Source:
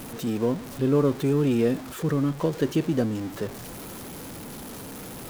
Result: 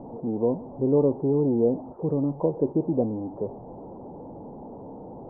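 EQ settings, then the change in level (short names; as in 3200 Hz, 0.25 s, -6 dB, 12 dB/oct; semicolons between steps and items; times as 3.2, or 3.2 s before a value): Chebyshev low-pass 900 Hz, order 5; low shelf 220 Hz -9.5 dB; +4.0 dB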